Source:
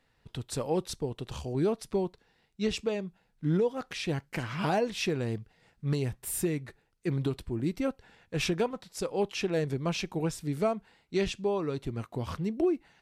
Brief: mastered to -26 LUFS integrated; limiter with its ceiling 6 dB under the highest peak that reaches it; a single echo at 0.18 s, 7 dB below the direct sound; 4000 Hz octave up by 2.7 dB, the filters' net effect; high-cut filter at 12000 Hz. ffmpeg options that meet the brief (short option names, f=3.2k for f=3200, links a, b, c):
-af "lowpass=12k,equalizer=f=4k:t=o:g=3.5,alimiter=limit=-23dB:level=0:latency=1,aecho=1:1:180:0.447,volume=7.5dB"